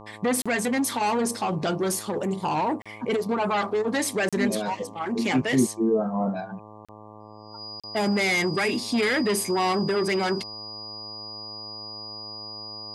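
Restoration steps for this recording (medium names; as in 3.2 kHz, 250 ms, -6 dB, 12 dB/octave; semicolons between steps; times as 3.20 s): de-hum 106.6 Hz, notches 11; band-stop 4.9 kHz, Q 30; interpolate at 0.42/2.82/4.29/6.85/7.80 s, 36 ms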